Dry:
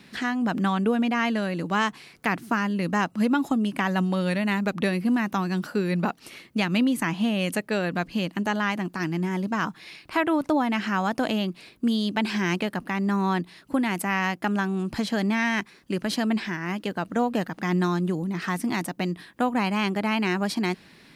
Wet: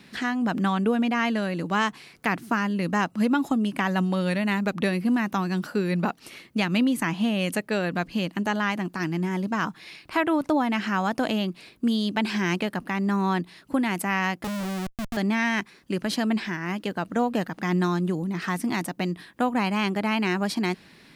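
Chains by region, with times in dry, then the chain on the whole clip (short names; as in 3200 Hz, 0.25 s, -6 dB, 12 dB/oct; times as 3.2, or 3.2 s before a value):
14.44–15.17 spectral contrast raised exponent 2.5 + rippled Chebyshev low-pass 3800 Hz, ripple 3 dB + Schmitt trigger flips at -28 dBFS
whole clip: dry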